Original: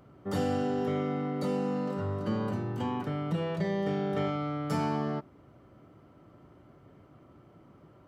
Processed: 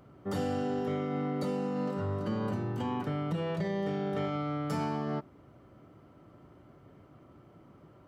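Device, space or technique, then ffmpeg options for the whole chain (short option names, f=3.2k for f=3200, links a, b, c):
clipper into limiter: -af "asoftclip=type=hard:threshold=-21.5dB,alimiter=level_in=0.5dB:limit=-24dB:level=0:latency=1:release=77,volume=-0.5dB"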